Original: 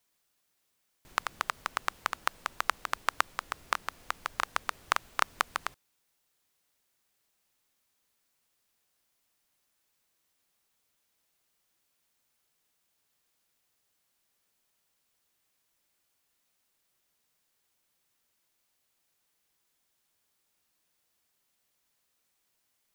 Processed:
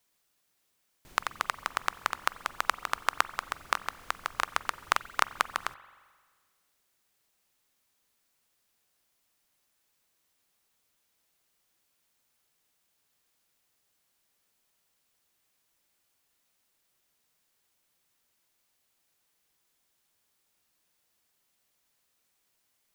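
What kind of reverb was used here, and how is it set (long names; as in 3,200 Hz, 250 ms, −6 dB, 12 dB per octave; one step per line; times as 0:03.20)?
spring reverb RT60 1.6 s, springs 43 ms, chirp 55 ms, DRR 16.5 dB
level +1.5 dB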